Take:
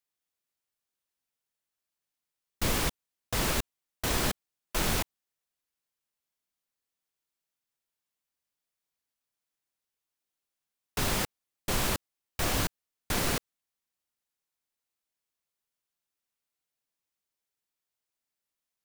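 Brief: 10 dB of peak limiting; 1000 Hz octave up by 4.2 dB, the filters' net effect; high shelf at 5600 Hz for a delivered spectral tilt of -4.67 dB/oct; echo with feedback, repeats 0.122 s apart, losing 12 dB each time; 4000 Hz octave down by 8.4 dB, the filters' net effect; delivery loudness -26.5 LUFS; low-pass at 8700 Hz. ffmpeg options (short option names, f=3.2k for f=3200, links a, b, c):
-af "lowpass=8.7k,equalizer=f=1k:t=o:g=6,equalizer=f=4k:t=o:g=-8,highshelf=f=5.6k:g=-8.5,alimiter=level_in=1.5dB:limit=-24dB:level=0:latency=1,volume=-1.5dB,aecho=1:1:122|244|366:0.251|0.0628|0.0157,volume=12dB"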